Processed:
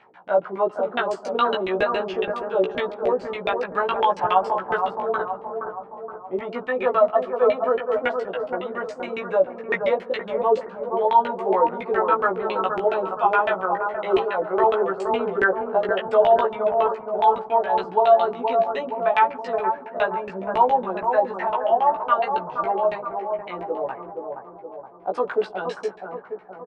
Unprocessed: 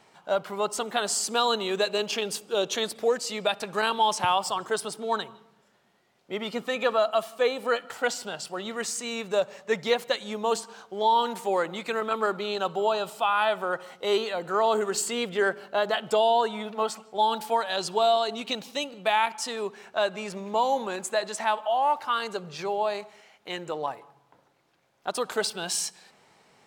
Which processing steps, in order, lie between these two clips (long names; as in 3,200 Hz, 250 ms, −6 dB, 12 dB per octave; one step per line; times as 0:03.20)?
low-shelf EQ 220 Hz −6 dB
auto-filter low-pass saw down 7.2 Hz 250–2,600 Hz
double-tracking delay 16 ms −2 dB
bucket-brigade delay 471 ms, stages 4,096, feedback 54%, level −5.5 dB